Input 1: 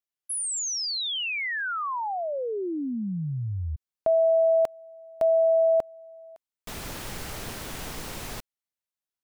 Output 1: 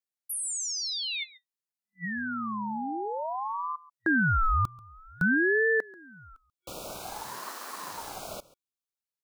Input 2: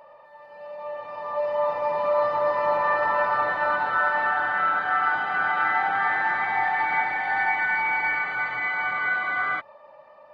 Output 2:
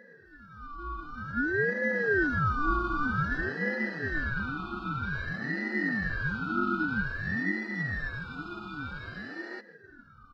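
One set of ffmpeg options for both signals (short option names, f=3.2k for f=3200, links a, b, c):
-af "aecho=1:1:137:0.0944,afftfilt=real='re*(1-between(b*sr/4096,900,2800))':imag='im*(1-between(b*sr/4096,900,2800))':win_size=4096:overlap=0.75,aeval=exprs='val(0)*sin(2*PI*820*n/s+820*0.35/0.52*sin(2*PI*0.52*n/s))':c=same"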